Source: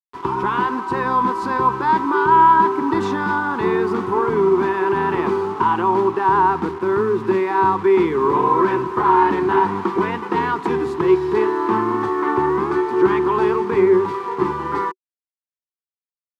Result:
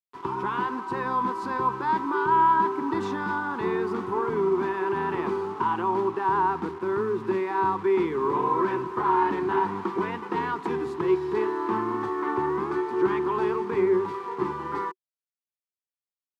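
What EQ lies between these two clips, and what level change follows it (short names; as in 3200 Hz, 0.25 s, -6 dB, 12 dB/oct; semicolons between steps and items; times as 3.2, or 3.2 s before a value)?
HPF 73 Hz; -8.0 dB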